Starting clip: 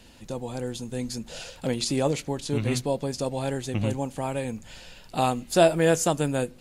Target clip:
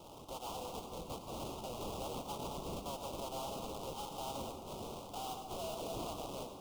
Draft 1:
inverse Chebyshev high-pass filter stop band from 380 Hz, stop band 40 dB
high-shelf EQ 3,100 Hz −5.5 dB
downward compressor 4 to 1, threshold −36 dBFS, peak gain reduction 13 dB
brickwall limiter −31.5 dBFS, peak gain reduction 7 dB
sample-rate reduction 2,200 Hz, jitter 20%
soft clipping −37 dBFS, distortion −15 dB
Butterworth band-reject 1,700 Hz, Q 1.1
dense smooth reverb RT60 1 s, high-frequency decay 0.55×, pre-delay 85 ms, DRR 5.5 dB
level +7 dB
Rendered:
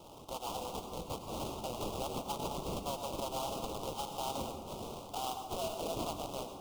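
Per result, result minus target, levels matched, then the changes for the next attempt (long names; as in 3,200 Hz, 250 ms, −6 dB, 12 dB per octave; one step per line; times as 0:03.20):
downward compressor: peak gain reduction +13 dB; soft clipping: distortion −9 dB
remove: downward compressor 4 to 1, threshold −36 dBFS, peak gain reduction 13 dB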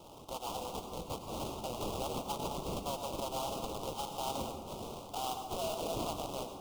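soft clipping: distortion −8 dB
change: soft clipping −46 dBFS, distortion −7 dB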